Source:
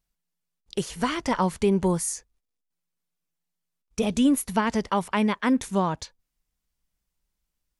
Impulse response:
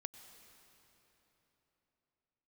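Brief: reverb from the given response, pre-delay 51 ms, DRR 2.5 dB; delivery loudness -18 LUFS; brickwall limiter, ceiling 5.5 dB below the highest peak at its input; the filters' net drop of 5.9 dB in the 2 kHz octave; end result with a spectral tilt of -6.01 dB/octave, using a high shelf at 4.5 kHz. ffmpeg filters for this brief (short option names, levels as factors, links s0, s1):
-filter_complex "[0:a]equalizer=f=2000:t=o:g=-6,highshelf=f=4500:g=-9,alimiter=limit=0.133:level=0:latency=1,asplit=2[s0][s1];[1:a]atrim=start_sample=2205,adelay=51[s2];[s1][s2]afir=irnorm=-1:irlink=0,volume=1.19[s3];[s0][s3]amix=inputs=2:normalize=0,volume=2.66"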